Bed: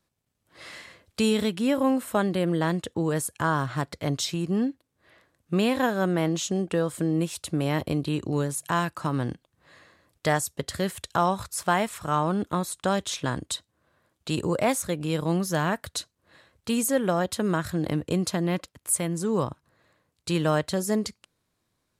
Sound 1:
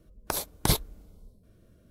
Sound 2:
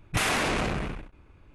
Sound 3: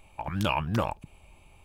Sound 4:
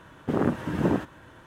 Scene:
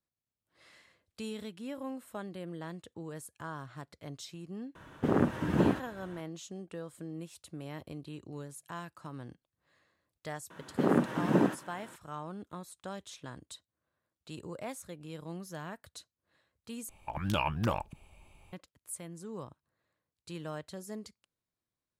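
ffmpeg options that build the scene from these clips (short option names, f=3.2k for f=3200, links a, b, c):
-filter_complex "[4:a]asplit=2[a][b];[0:a]volume=-17dB[c];[b]highpass=f=140:w=0.5412,highpass=f=140:w=1.3066[d];[c]asplit=2[e][f];[e]atrim=end=16.894[g];[3:a]atrim=end=1.64,asetpts=PTS-STARTPTS,volume=-3.5dB[h];[f]atrim=start=18.526[i];[a]atrim=end=1.46,asetpts=PTS-STARTPTS,volume=-2.5dB,afade=t=in:d=0.004:c=hsin,afade=t=out:st=1.456:d=0.004:c=hsin,adelay=4750[j];[d]atrim=end=1.46,asetpts=PTS-STARTPTS,volume=-1.5dB,afade=t=in:d=0.004:c=hsin,afade=t=out:st=1.456:d=0.004:c=hsin,adelay=463050S[k];[g][h]acrossfade=d=0.004:c1=hsin:c2=hsin[l];[l][i]acrossfade=d=0.004:c1=hsin:c2=hsin[m];[m][j][k]amix=inputs=3:normalize=0"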